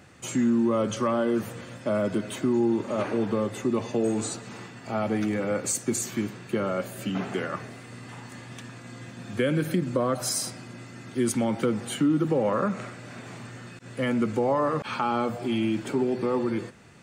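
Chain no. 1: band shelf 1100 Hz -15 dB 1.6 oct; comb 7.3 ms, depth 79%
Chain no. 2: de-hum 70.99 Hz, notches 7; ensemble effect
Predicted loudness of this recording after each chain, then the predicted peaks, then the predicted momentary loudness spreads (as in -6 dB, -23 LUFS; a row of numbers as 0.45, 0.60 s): -26.5, -30.5 LUFS; -10.5, -14.5 dBFS; 16, 18 LU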